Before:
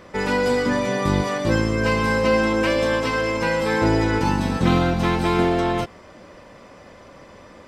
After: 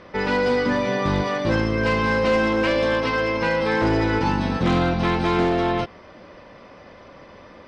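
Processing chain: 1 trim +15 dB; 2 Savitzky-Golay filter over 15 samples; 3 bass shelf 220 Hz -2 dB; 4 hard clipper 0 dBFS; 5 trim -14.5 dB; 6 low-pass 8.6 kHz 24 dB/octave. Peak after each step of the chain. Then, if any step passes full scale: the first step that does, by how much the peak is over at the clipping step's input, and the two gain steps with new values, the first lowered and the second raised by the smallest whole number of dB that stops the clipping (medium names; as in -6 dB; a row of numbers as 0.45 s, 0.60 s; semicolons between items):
+10.0 dBFS, +10.0 dBFS, +9.5 dBFS, 0.0 dBFS, -14.5 dBFS, -14.0 dBFS; step 1, 9.5 dB; step 1 +5 dB, step 5 -4.5 dB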